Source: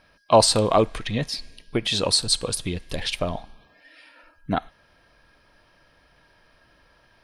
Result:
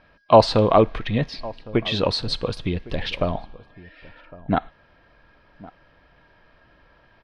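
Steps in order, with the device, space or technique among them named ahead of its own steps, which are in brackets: shout across a valley (distance through air 260 m; echo from a far wall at 190 m, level -20 dB); trim +4 dB

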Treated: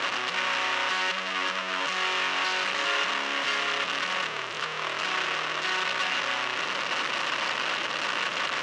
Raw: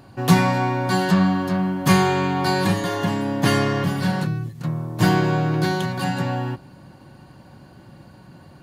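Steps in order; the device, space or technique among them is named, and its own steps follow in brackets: home computer beeper (one-bit comparator; cabinet simulation 730–5500 Hz, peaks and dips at 790 Hz -8 dB, 1.2 kHz +4 dB, 1.9 kHz +3 dB, 2.8 kHz +7 dB, 4.6 kHz -4 dB); trim -2.5 dB

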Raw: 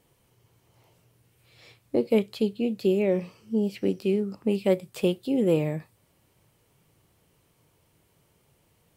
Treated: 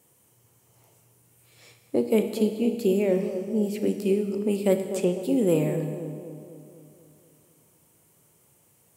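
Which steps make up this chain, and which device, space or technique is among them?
budget condenser microphone (high-pass 100 Hz; resonant high shelf 5.7 kHz +8 dB, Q 1.5); 4.76–5.21 s: low-pass that closes with the level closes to 2 kHz, closed at -22.5 dBFS; bucket-brigade echo 248 ms, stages 2048, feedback 56%, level -10.5 dB; Schroeder reverb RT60 1.8 s, combs from 26 ms, DRR 8 dB

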